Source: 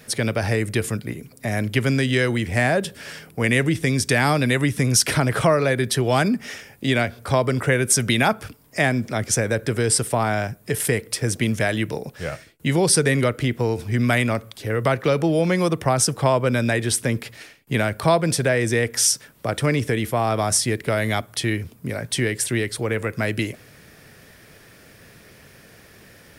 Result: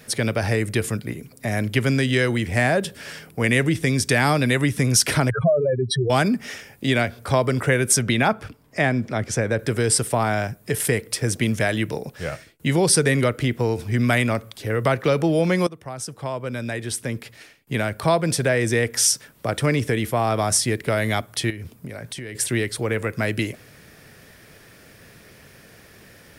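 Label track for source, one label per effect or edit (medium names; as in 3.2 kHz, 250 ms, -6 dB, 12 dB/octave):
5.300000	6.100000	spectral contrast enhancement exponent 3.5
7.990000	9.590000	low-pass 3.1 kHz 6 dB/octave
15.670000	18.650000	fade in linear, from -18 dB
21.500000	22.350000	compression 10:1, threshold -29 dBFS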